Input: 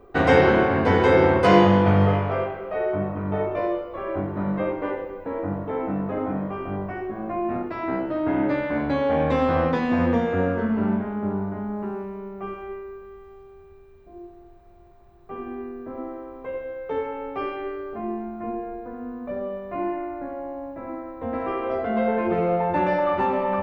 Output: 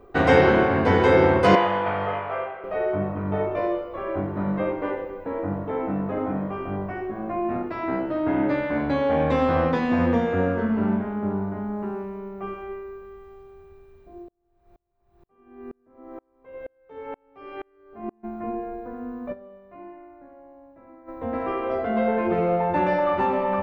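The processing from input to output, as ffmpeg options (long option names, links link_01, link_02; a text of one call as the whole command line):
ffmpeg -i in.wav -filter_complex "[0:a]asettb=1/sr,asplit=3[link_01][link_02][link_03];[link_01]atrim=end=1.554[link_04];[link_02]atrim=start=1.55:end=2.64,asetpts=PTS-STARTPTS,afade=type=in:duration=0.004:curve=qsin,afade=type=out:start_time=1.086:duration=0.004:curve=qsin,acrossover=split=520 3500:gain=0.141 1 0.158[link_05][link_06][link_07];[link_05][link_06][link_07]amix=inputs=3:normalize=0[link_08];[link_03]atrim=start=2.636[link_09];[link_04][link_08]acrossfade=duration=0.004:curve1=hsin:curve2=qsin[link_10];[link_10][link_09]acrossfade=duration=0.004:curve1=qsin:curve2=hsin,asplit=3[link_11][link_12][link_13];[link_11]afade=type=out:start_time=14.23:duration=0.02[link_14];[link_12]aeval=exprs='val(0)*pow(10,-37*if(lt(mod(-2.1*n/s,1),2*abs(-2.1)/1000),1-mod(-2.1*n/s,1)/(2*abs(-2.1)/1000),(mod(-2.1*n/s,1)-2*abs(-2.1)/1000)/(1-2*abs(-2.1)/1000))/20)':channel_layout=same,afade=type=in:start_time=14.23:duration=0.02,afade=type=out:start_time=18.23:duration=0.02[link_15];[link_13]afade=type=in:start_time=18.23:duration=0.02[link_16];[link_14][link_15][link_16]amix=inputs=3:normalize=0,asplit=3[link_17][link_18][link_19];[link_17]atrim=end=19.45,asetpts=PTS-STARTPTS,afade=type=out:start_time=19.32:duration=0.13:curve=exp:silence=0.177828[link_20];[link_18]atrim=start=19.45:end=20.96,asetpts=PTS-STARTPTS,volume=-15dB[link_21];[link_19]atrim=start=20.96,asetpts=PTS-STARTPTS,afade=type=in:duration=0.13:curve=exp:silence=0.177828[link_22];[link_20][link_21][link_22]concat=n=3:v=0:a=1" out.wav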